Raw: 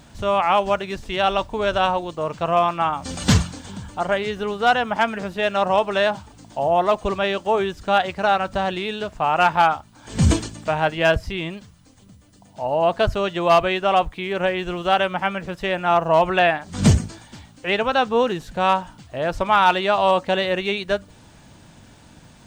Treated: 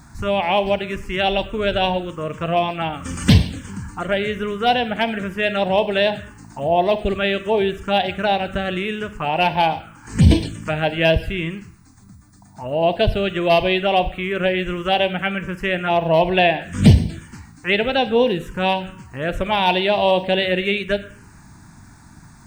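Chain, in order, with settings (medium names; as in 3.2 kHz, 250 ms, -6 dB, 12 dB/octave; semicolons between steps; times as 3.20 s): Schroeder reverb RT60 0.71 s, combs from 33 ms, DRR 12.5 dB; touch-sensitive phaser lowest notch 510 Hz, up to 1.3 kHz, full sweep at -15 dBFS; trim +4.5 dB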